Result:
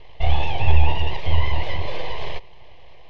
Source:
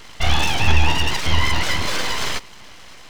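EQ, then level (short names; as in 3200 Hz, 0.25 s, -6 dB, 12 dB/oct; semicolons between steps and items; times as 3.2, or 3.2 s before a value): Bessel low-pass 2100 Hz, order 4; low shelf 150 Hz +3 dB; fixed phaser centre 580 Hz, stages 4; 0.0 dB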